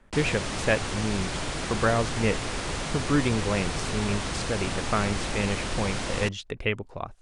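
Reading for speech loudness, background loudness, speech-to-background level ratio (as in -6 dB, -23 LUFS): -29.0 LUFS, -31.0 LUFS, 2.0 dB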